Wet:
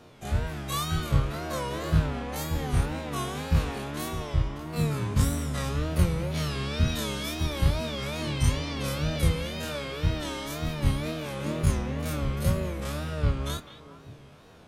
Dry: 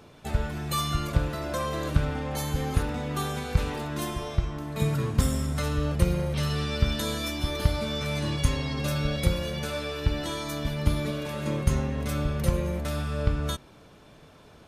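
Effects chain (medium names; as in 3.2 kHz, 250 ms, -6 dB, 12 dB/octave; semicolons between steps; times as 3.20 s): every event in the spectrogram widened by 60 ms; Chebyshev shaper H 8 -42 dB, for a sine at -4.5 dBFS; wow and flutter 140 cents; flange 0.71 Hz, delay 8.5 ms, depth 3.1 ms, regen -70%; on a send: repeats whose band climbs or falls 206 ms, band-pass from 2.5 kHz, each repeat -1.4 oct, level -8.5 dB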